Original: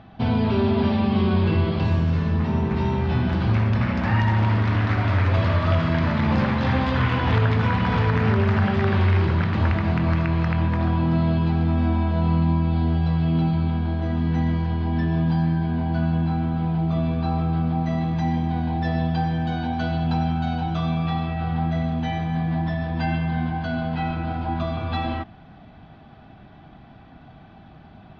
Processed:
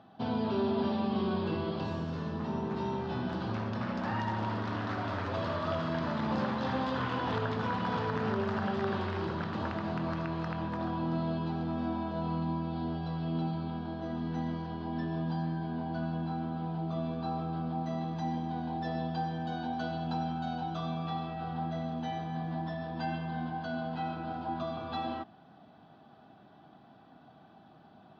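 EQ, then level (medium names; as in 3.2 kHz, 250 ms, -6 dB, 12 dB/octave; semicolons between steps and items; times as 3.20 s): Bessel high-pass 260 Hz, order 2; peaking EQ 2.2 kHz -11 dB 0.67 oct; -6.0 dB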